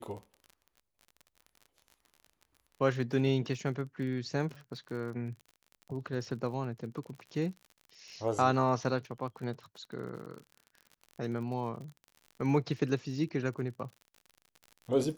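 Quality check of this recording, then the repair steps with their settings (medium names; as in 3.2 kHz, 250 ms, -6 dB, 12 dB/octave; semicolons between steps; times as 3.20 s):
crackle 43 per s -42 dBFS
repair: de-click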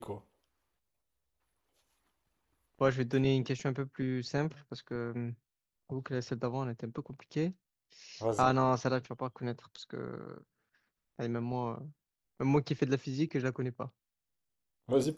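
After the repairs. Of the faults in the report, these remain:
nothing left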